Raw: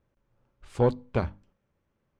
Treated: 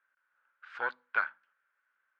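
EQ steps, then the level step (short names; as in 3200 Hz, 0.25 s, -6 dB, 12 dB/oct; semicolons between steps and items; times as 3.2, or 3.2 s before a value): resonant high-pass 1500 Hz, resonance Q 7.4; air absorption 270 m; 0.0 dB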